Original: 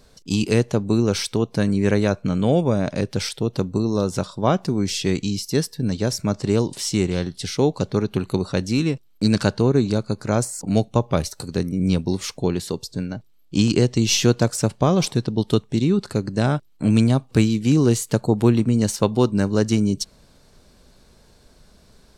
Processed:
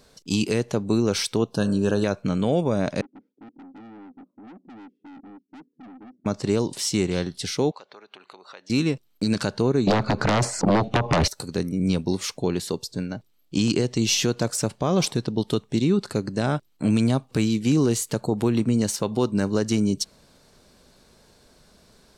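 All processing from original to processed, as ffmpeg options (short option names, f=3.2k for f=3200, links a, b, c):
-filter_complex "[0:a]asettb=1/sr,asplit=3[a][b][c];[a]atrim=end=1.514[d];[b]atrim=start=1.51:end=2.04,asetpts=PTS-STARTPTS,afade=t=in:d=0.004:c=qsin,afade=t=out:st=0.526:d=0.004:c=qsin,asuperstop=centerf=2100:order=8:qfactor=2.4,bandreject=f=76.33:t=h:w=4,bandreject=f=152.66:t=h:w=4,bandreject=f=228.99:t=h:w=4,bandreject=f=305.32:t=h:w=4,bandreject=f=381.65:t=h:w=4,bandreject=f=457.98:t=h:w=4,bandreject=f=534.31:t=h:w=4,bandreject=f=610.64:t=h:w=4,bandreject=f=686.97:t=h:w=4,bandreject=f=763.3:t=h:w=4,bandreject=f=839.63:t=h:w=4,bandreject=f=915.96:t=h:w=4,bandreject=f=992.29:t=h:w=4,bandreject=f=1.06862k:t=h:w=4,bandreject=f=1.14495k:t=h:w=4,bandreject=f=1.22128k:t=h:w=4,bandreject=f=1.29761k:t=h:w=4,bandreject=f=1.37394k:t=h:w=4,bandreject=f=1.45027k:t=h:w=4,bandreject=f=1.5266k:t=h:w=4,bandreject=f=1.60293k:t=h:w=4,bandreject=f=1.67926k:t=h:w=4,bandreject=f=1.75559k:t=h:w=4,bandreject=f=1.83192k:t=h:w=4,bandreject=f=1.90825k:t=h:w=4,bandreject=f=1.98458k:t=h:w=4,bandreject=f=2.06091k:t=h:w=4,bandreject=f=2.13724k:t=h:w=4,bandreject=f=2.21357k:t=h:w=4,bandreject=f=2.2899k:t=h:w=4,bandreject=f=2.36623k:t=h:w=4,bandreject=f=2.44256k:t=h:w=4,bandreject=f=2.51889k:t=h:w=4,bandreject=f=2.59522k:t=h:w=4[e];[c]atrim=start=2.036[f];[d][e]acrossfade=d=0.004:c1=hsin:c2=qsin[g];[g][f]acrossfade=d=0.004:c1=qsin:c2=hsin,asettb=1/sr,asplit=3[h][i][j];[h]atrim=end=3.014[k];[i]atrim=start=3.01:end=6.26,asetpts=PTS-STARTPTS,afade=t=in:d=0.004:c=qsin,afade=t=out:st=3.246:d=0.004:c=qsin,asuperpass=centerf=270:order=4:qfactor=3.5,aeval=exprs='(tanh(112*val(0)+0.2)-tanh(0.2))/112':c=same[l];[j]atrim=start=6.256[m];[k][l]acrossfade=d=0.004:c1=hsin:c2=qsin[n];[n][m]acrossfade=d=0.004:c1=qsin:c2=hsin,asettb=1/sr,asplit=3[o][p][q];[o]atrim=end=7.714[r];[p]atrim=start=7.71:end=8.7,asetpts=PTS-STARTPTS,afade=t=in:d=0.004:c=qsin,afade=t=out:st=0.986:d=0.004:c=qsin,acompressor=threshold=-32dB:ratio=4:attack=3.2:release=140:knee=1:detection=peak,highpass=760,lowpass=3.5k[s];[q]atrim=start=8.696[t];[r][s]acrossfade=d=0.004:c1=hsin:c2=qsin[u];[u][t]acrossfade=d=0.004:c1=qsin:c2=hsin,asettb=1/sr,asplit=3[v][w][x];[v]atrim=end=9.874[y];[w]atrim=start=9.87:end=11.28,asetpts=PTS-STARTPTS,afade=t=in:d=0.004:c=qsin,afade=t=out:st=1.406:d=0.004:c=qsin,lowpass=3k,acompressor=threshold=-19dB:ratio=12:attack=3.2:release=140:knee=1:detection=peak,aeval=exprs='0.299*sin(PI/2*5.01*val(0)/0.299)':c=same[z];[x]atrim=start=11.276[aa];[y][z]acrossfade=d=0.004:c1=hsin:c2=qsin[ab];[ab][aa]acrossfade=d=0.004:c1=qsin:c2=hsin,lowshelf=f=100:g=-10,alimiter=limit=-11dB:level=0:latency=1:release=73"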